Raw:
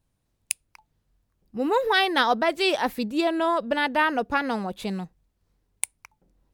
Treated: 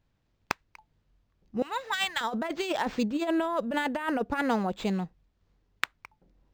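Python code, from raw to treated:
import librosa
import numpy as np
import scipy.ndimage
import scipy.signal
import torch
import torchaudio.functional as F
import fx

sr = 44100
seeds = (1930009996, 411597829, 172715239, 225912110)

y = fx.highpass(x, sr, hz=1500.0, slope=12, at=(1.62, 2.21))
y = fx.over_compress(y, sr, threshold_db=-25.0, ratio=-0.5)
y = np.interp(np.arange(len(y)), np.arange(len(y))[::4], y[::4])
y = y * 10.0 ** (-1.5 / 20.0)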